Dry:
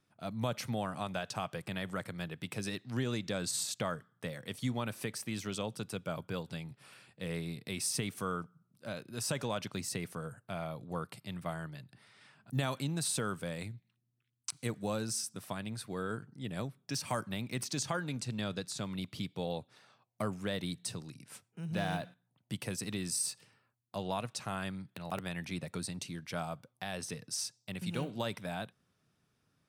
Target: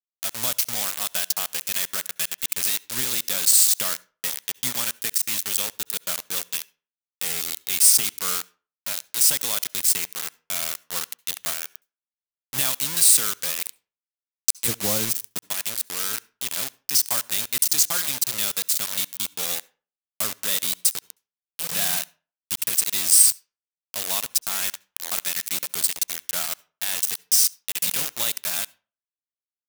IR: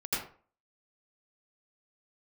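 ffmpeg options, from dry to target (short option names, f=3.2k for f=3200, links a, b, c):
-filter_complex "[0:a]asettb=1/sr,asplit=3[a][b][c];[a]atrim=end=14.684[d];[b]atrim=start=14.68:end=15.38,asetpts=PTS-STARTPTS,afade=t=in:d=0.004:c=qsin,afade=t=out:st=0.696:d=0.004:c=qsin,tiltshelf=f=1.4k:g=9.5[e];[c]atrim=start=15.376[f];[d][e]acrossfade=d=0.004:c1=hsin:c2=qsin[g];[g][f]acrossfade=d=0.004:c1=qsin:c2=hsin,acrusher=bits=5:mix=0:aa=0.000001,crystalizer=i=9:c=0,aeval=exprs='sgn(val(0))*max(abs(val(0))-0.02,0)':c=same,asplit=2[h][i];[1:a]atrim=start_sample=2205,asetrate=52920,aresample=44100[j];[i][j]afir=irnorm=-1:irlink=0,volume=-28dB[k];[h][k]amix=inputs=2:normalize=0,volume=-1dB"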